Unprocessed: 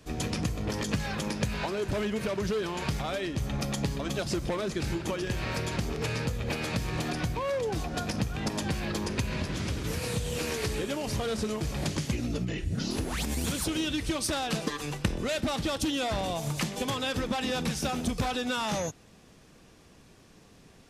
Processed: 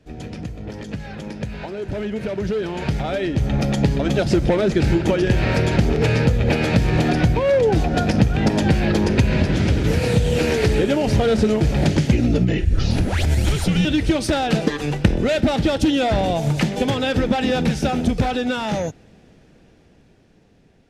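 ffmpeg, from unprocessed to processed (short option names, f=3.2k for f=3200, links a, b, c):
-filter_complex "[0:a]asettb=1/sr,asplit=3[a][b][c];[a]atrim=end=12.654[d];[b]atrim=start=12.65:end=13.85,asetpts=PTS-STARTPTS,afade=t=in:d=0.004:c=qsin,afade=t=out:st=1.196:d=0.004:c=qsin,afreqshift=-140[e];[c]atrim=start=13.846[f];[d][e]acrossfade=d=0.004:c1=hsin:c2=qsin[g];[g][f]acrossfade=d=0.004:c1=qsin:c2=hsin,lowpass=f=1.8k:p=1,equalizer=f=1.1k:w=4.3:g=-11.5,dynaudnorm=f=880:g=7:m=16dB"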